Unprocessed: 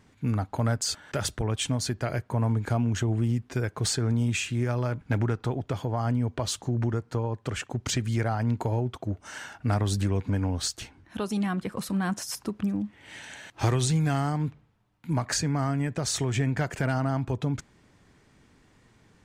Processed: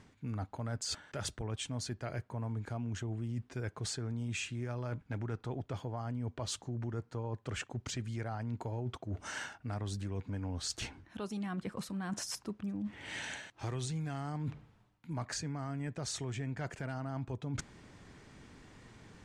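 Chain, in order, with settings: low-pass 9.5 kHz 12 dB/octave; reverse; compression 6:1, threshold -41 dBFS, peak gain reduction 19.5 dB; reverse; trim +4 dB

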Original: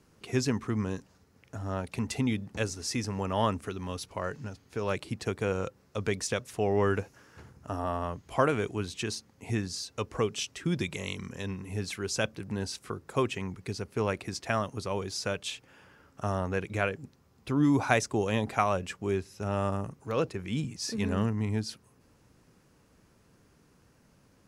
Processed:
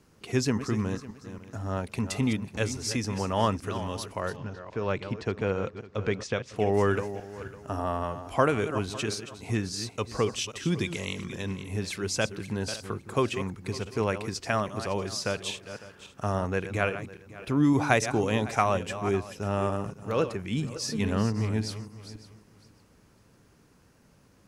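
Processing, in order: backward echo that repeats 277 ms, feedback 43%, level -11 dB; 4.36–6.56 s: distance through air 140 m; trim +2 dB

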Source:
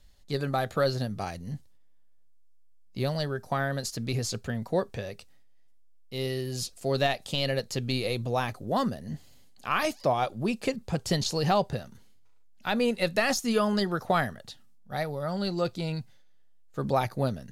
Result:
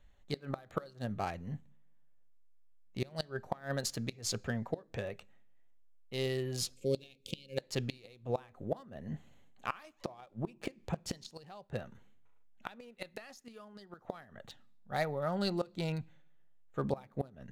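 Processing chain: local Wiener filter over 9 samples; time-frequency box 6.74–7.57 s, 540–2100 Hz -22 dB; inverted gate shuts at -19 dBFS, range -25 dB; bass shelf 440 Hz -5 dB; on a send: reverberation RT60 0.65 s, pre-delay 3 ms, DRR 20 dB

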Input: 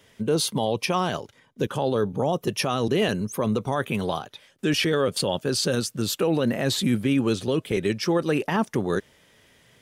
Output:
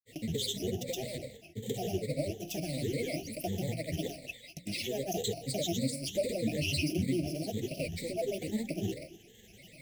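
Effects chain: block-companded coder 3-bit; bass shelf 130 Hz +4 dB; gated-style reverb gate 270 ms falling, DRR 10.5 dB; compression 2.5:1, threshold -39 dBFS, peak gain reduction 15 dB; rippled EQ curve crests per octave 1, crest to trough 18 dB; granulator, pitch spread up and down by 7 st; elliptic band-stop 660–2100 Hz, stop band 60 dB; hum notches 60/120/180/240/300 Hz

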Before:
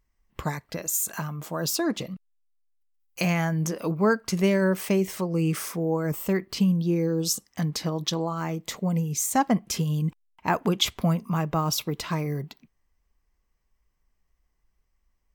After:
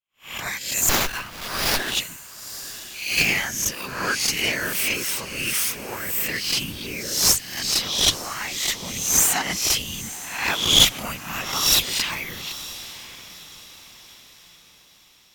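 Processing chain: reverse spectral sustain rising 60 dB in 0.63 s; pre-emphasis filter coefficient 0.9; expander -53 dBFS; peaking EQ 2.6 kHz +15 dB 1.9 oct; one-sided clip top -28 dBFS, bottom -9.5 dBFS; whisper effect; on a send: echo that smears into a reverb 943 ms, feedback 42%, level -15 dB; 0.89–1.95 s: on the sum: sliding maximum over 5 samples; trim +6.5 dB

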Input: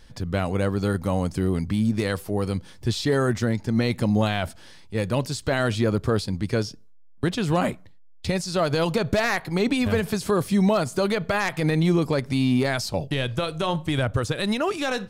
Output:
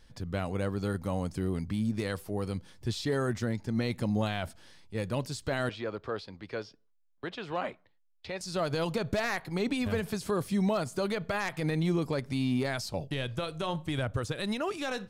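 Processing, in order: 5.69–8.41 s: three-band isolator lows -14 dB, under 380 Hz, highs -24 dB, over 4.5 kHz; trim -8 dB

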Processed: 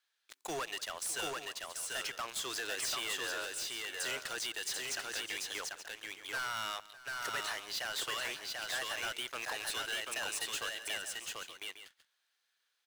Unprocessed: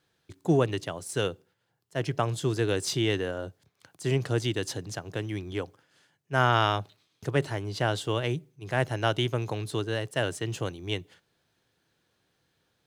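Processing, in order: high-pass 1.4 kHz 12 dB/octave; waveshaping leveller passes 3; compression, threshold -31 dBFS, peak gain reduction 10 dB; overload inside the chain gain 34.5 dB; on a send: multi-tap echo 173/604/739/878 ms -19/-18.5/-3/-12.5 dB

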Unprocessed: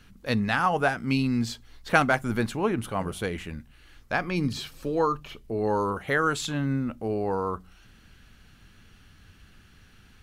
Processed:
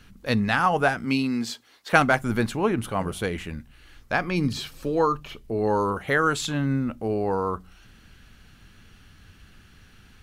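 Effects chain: 1.04–1.92 s: high-pass 160 Hz -> 460 Hz 12 dB/octave; trim +2.5 dB

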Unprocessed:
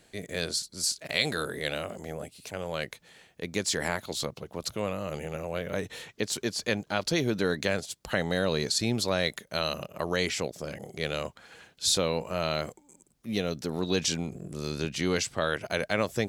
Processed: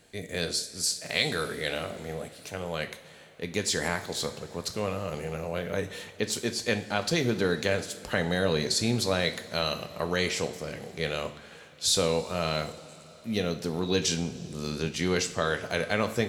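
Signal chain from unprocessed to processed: two-slope reverb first 0.47 s, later 4.3 s, from -18 dB, DRR 6.5 dB

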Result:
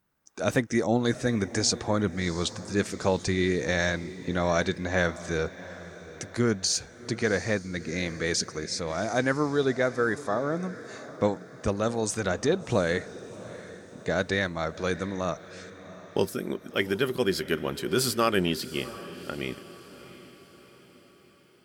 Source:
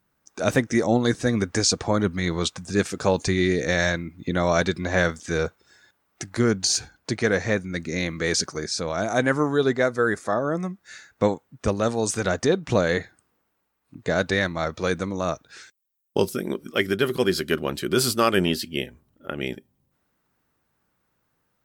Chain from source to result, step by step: echo that smears into a reverb 715 ms, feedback 50%, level -16 dB; trim -4 dB

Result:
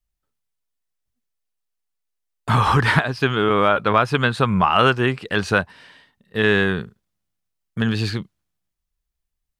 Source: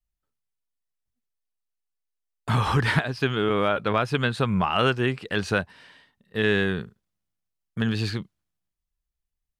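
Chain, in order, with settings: dynamic bell 1.1 kHz, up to +5 dB, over -35 dBFS, Q 1.3; trim +4 dB

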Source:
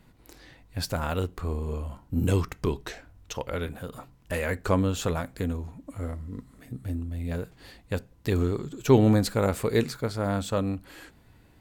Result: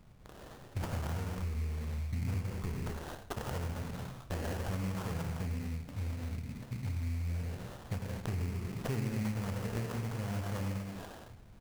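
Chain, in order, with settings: in parallel at -12 dB: bit crusher 5-bit; on the sum: high-order bell 560 Hz -11.5 dB 2.7 oct; on a send: delay 104 ms -13 dB; on the sum: gated-style reverb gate 260 ms flat, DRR -1 dB; sample-rate reducer 2.3 kHz, jitter 20%; dynamic bell 3.7 kHz, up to -5 dB, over -54 dBFS, Q 4.4; compression 4:1, threshold -35 dBFS, peak gain reduction 18 dB

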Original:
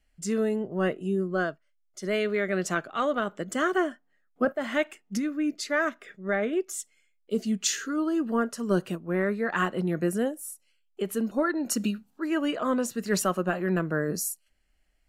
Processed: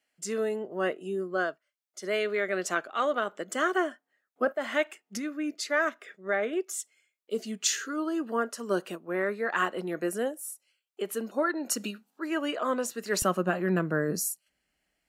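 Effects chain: high-pass 360 Hz 12 dB/octave, from 13.22 s 110 Hz

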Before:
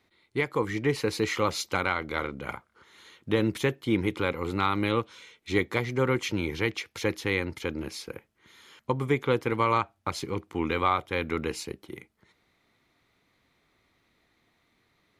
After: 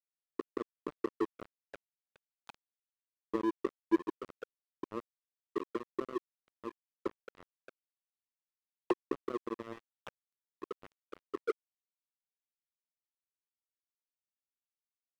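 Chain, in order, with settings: high-pass 270 Hz 6 dB/octave; hum notches 50/100/150/200/250/300/350 Hz; auto-wah 350–3300 Hz, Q 14, down, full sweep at -26.5 dBFS; crossover distortion -38 dBFS; trim +12 dB

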